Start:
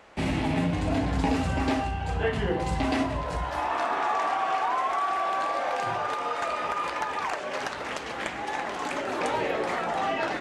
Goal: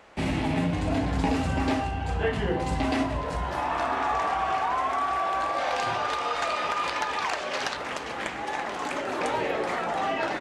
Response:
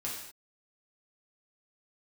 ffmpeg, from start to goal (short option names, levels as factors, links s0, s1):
-filter_complex "[0:a]asettb=1/sr,asplit=3[s0][s1][s2];[s0]atrim=end=5.584[s3];[s1]atrim=start=5.58:end=7.77,asetpts=PTS-STARTPTS,afade=t=in:d=0.004:c=qsin,afade=t=out:st=2.186:d=0.004:c=qsin,equalizer=f=4200:t=o:w=1.7:g=7.5[s4];[s2]atrim=start=7.766[s5];[s3][s4]acrossfade=d=0.004:c1=hsin:c2=qsin[s6];[s6][s5]acrossfade=d=0.004:c1=qsin:c2=hsin,asplit=2[s7][s8];[s8]adelay=998,lowpass=f=2000:p=1,volume=0.178,asplit=2[s9][s10];[s10]adelay=998,lowpass=f=2000:p=1,volume=0.54,asplit=2[s11][s12];[s12]adelay=998,lowpass=f=2000:p=1,volume=0.54,asplit=2[s13][s14];[s14]adelay=998,lowpass=f=2000:p=1,volume=0.54,asplit=2[s15][s16];[s16]adelay=998,lowpass=f=2000:p=1,volume=0.54[s17];[s7][s9][s11][s13][s15][s17]amix=inputs=6:normalize=0"